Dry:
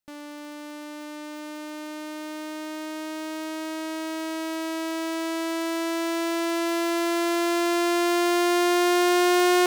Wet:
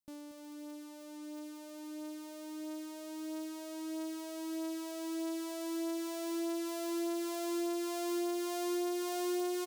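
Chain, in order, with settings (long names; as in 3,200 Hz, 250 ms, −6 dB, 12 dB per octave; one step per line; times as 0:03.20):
on a send: single-tap delay 233 ms −12.5 dB
on the sum: reverb reduction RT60 0.85 s
parametric band 1,700 Hz −13 dB 2.4 octaves
downward compressor 6 to 1, threshold −29 dBFS, peak gain reduction 7.5 dB
level −3.5 dB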